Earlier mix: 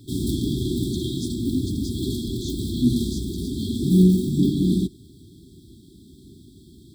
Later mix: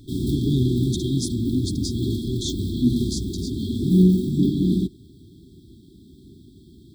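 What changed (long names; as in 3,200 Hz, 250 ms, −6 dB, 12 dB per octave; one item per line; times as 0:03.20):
speech +9.0 dB
background: add parametric band 9,200 Hz −7.5 dB 1.8 octaves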